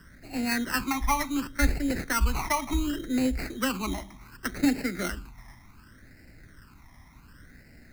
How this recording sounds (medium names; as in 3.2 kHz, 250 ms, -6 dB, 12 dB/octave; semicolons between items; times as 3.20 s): aliases and images of a low sample rate 3.5 kHz, jitter 0%; phasing stages 12, 0.68 Hz, lowest notch 470–1100 Hz